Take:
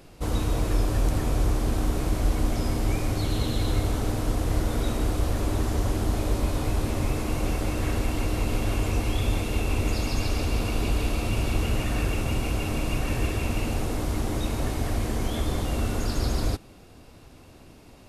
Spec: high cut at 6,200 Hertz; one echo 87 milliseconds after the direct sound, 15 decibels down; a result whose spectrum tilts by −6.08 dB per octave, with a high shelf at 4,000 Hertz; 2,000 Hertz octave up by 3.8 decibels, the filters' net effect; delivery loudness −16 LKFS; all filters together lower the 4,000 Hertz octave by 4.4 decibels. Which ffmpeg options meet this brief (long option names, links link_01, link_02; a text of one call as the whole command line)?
ffmpeg -i in.wav -af "lowpass=6200,equalizer=frequency=2000:width_type=o:gain=8.5,highshelf=frequency=4000:gain=-6,equalizer=frequency=4000:width_type=o:gain=-5.5,aecho=1:1:87:0.178,volume=11.5dB" out.wav